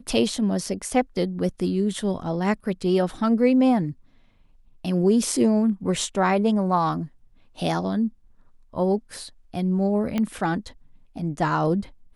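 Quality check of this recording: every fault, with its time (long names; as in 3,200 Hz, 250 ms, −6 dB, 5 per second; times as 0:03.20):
0:10.18: click −13 dBFS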